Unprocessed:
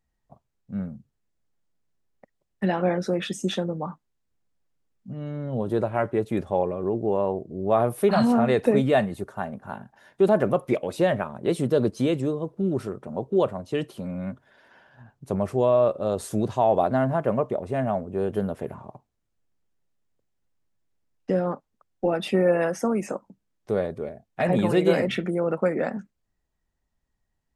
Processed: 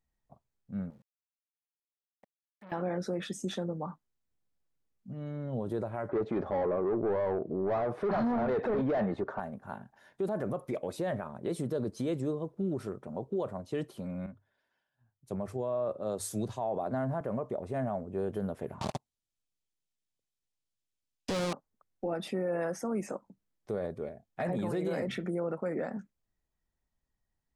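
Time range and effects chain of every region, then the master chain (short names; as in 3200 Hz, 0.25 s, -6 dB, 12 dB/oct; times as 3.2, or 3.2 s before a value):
0.9–2.72 compressor 2:1, threshold -50 dBFS + sample gate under -58.5 dBFS + core saturation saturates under 1000 Hz
6.09–9.4 overdrive pedal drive 25 dB, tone 3200 Hz, clips at -8 dBFS + tape spacing loss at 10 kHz 34 dB
14.26–17.21 notches 50/100 Hz + three-band expander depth 70%
18.81–21.53 sample leveller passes 5 + band shelf 5200 Hz +12.5 dB 2.4 oct
whole clip: notch 2800 Hz, Q 27; dynamic EQ 2800 Hz, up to -6 dB, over -47 dBFS, Q 1.7; limiter -18.5 dBFS; gain -6 dB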